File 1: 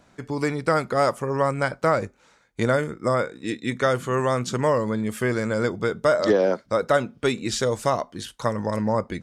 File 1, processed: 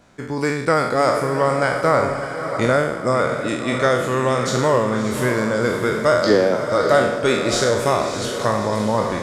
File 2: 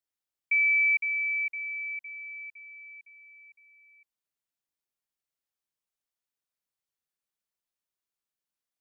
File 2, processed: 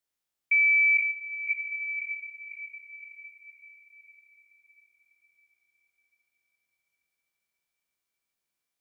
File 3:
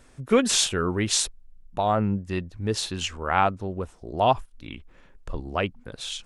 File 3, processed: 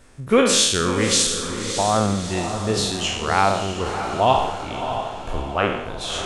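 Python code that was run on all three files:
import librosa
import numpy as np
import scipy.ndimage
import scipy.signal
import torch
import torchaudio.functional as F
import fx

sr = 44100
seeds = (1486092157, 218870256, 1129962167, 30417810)

p1 = fx.spec_trails(x, sr, decay_s=0.8)
p2 = p1 + fx.echo_diffused(p1, sr, ms=625, feedback_pct=49, wet_db=-8.0, dry=0)
y = p2 * librosa.db_to_amplitude(2.0)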